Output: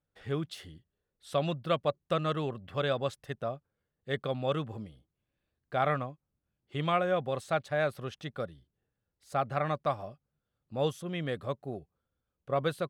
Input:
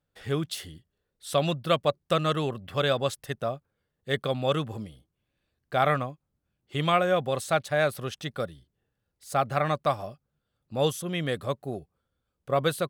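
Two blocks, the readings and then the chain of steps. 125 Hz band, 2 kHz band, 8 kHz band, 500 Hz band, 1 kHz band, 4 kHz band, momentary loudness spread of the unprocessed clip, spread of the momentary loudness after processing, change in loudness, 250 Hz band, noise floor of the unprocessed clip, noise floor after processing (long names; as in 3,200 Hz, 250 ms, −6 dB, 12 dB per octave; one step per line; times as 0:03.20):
−4.5 dB, −6.0 dB, below −10 dB, −4.5 dB, −5.0 dB, −8.0 dB, 12 LU, 12 LU, −5.0 dB, −4.5 dB, −81 dBFS, below −85 dBFS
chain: low-pass filter 2,900 Hz 6 dB per octave
level −4.5 dB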